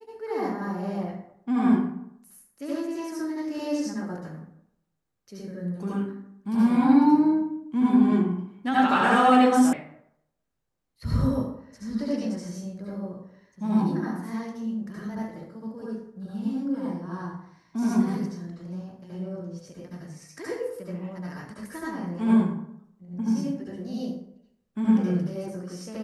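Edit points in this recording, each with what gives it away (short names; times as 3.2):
9.73 sound cut off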